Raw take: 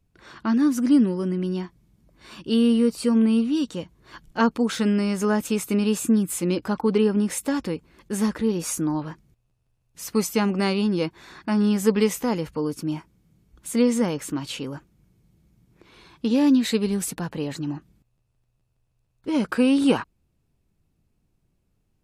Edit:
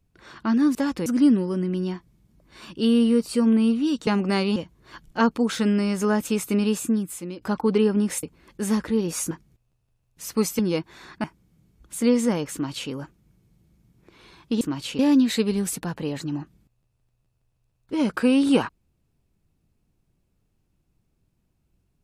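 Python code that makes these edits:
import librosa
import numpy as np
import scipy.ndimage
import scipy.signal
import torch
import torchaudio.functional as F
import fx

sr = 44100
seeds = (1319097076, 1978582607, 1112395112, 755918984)

y = fx.edit(x, sr, fx.fade_out_to(start_s=5.83, length_s=0.78, floor_db=-15.5),
    fx.move(start_s=7.43, length_s=0.31, to_s=0.75),
    fx.cut(start_s=8.82, length_s=0.27),
    fx.move(start_s=10.37, length_s=0.49, to_s=3.76),
    fx.cut(start_s=11.51, length_s=1.46),
    fx.duplicate(start_s=14.26, length_s=0.38, to_s=16.34), tone=tone)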